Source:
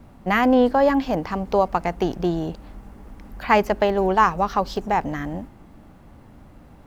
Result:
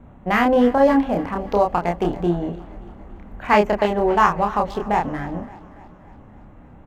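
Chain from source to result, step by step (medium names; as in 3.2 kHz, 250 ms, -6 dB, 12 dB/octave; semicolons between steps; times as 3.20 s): local Wiener filter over 9 samples; doubling 29 ms -3 dB; on a send: thinning echo 285 ms, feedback 58%, high-pass 210 Hz, level -18.5 dB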